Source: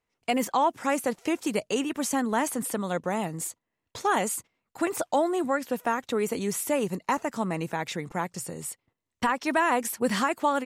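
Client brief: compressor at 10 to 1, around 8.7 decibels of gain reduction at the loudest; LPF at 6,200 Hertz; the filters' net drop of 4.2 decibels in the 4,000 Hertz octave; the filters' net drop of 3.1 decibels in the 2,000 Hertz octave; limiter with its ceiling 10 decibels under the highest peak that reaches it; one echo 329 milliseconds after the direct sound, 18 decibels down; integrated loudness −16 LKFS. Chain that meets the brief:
low-pass filter 6,200 Hz
parametric band 2,000 Hz −3 dB
parametric band 4,000 Hz −4 dB
downward compressor 10 to 1, threshold −29 dBFS
brickwall limiter −28.5 dBFS
single-tap delay 329 ms −18 dB
level +22.5 dB

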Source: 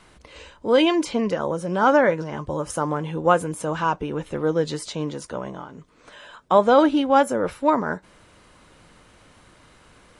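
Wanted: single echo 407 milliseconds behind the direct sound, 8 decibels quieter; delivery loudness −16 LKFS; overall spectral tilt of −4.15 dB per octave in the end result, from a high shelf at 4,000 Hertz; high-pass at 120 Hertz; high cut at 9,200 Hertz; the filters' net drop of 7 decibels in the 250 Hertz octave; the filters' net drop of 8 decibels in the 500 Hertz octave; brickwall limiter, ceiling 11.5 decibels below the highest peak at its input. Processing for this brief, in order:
high-pass filter 120 Hz
low-pass filter 9,200 Hz
parametric band 250 Hz −6 dB
parametric band 500 Hz −8 dB
high-shelf EQ 4,000 Hz −7 dB
brickwall limiter −18.5 dBFS
single-tap delay 407 ms −8 dB
level +14.5 dB

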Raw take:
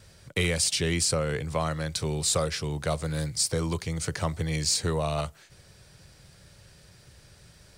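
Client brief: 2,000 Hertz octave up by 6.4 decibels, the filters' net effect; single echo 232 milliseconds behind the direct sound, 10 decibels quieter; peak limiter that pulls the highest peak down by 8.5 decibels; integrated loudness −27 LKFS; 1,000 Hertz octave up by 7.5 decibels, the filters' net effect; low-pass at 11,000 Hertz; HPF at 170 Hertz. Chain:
high-pass filter 170 Hz
low-pass filter 11,000 Hz
parametric band 1,000 Hz +8 dB
parametric band 2,000 Hz +5.5 dB
brickwall limiter −17.5 dBFS
single-tap delay 232 ms −10 dB
level +1.5 dB

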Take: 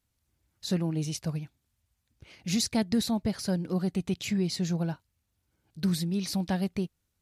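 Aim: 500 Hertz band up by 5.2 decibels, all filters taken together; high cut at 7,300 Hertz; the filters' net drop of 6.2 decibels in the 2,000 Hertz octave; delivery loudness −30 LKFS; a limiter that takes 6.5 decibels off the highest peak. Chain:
low-pass filter 7,300 Hz
parametric band 500 Hz +7.5 dB
parametric band 2,000 Hz −8.5 dB
level +1 dB
brickwall limiter −19 dBFS

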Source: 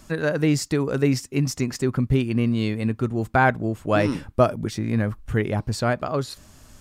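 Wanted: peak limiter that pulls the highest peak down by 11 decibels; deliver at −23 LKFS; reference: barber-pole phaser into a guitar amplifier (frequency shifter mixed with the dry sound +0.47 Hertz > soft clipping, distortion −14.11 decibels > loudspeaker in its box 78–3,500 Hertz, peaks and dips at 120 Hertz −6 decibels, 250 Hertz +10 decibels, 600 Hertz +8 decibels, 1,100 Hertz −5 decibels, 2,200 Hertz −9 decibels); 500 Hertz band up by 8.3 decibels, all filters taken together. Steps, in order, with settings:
parametric band 500 Hz +4.5 dB
brickwall limiter −14.5 dBFS
frequency shifter mixed with the dry sound +0.47 Hz
soft clipping −23.5 dBFS
loudspeaker in its box 78–3,500 Hz, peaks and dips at 120 Hz −6 dB, 250 Hz +10 dB, 600 Hz +8 dB, 1,100 Hz −5 dB, 2,200 Hz −9 dB
level +5.5 dB

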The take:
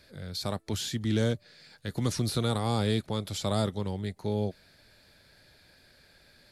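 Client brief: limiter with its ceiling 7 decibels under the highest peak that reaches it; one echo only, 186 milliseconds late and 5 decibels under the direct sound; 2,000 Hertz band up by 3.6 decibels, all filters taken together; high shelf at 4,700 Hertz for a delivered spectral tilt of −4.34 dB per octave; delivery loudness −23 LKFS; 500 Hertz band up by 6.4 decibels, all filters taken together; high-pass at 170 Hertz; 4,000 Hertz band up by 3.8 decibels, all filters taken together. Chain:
high-pass filter 170 Hz
parametric band 500 Hz +7.5 dB
parametric band 2,000 Hz +3.5 dB
parametric band 4,000 Hz +5 dB
high-shelf EQ 4,700 Hz −3.5 dB
brickwall limiter −20.5 dBFS
single-tap delay 186 ms −5 dB
level +8 dB

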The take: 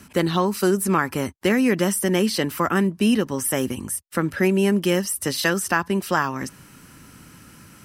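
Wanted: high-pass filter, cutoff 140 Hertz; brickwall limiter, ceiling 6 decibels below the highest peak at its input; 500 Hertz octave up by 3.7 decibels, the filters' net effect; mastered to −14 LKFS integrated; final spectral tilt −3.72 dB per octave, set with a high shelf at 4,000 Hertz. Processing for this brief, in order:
high-pass filter 140 Hz
parametric band 500 Hz +5 dB
high-shelf EQ 4,000 Hz +8.5 dB
level +6 dB
brickwall limiter −3 dBFS

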